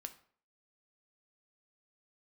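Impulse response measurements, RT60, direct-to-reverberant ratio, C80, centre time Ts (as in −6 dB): 0.50 s, 7.5 dB, 18.5 dB, 6 ms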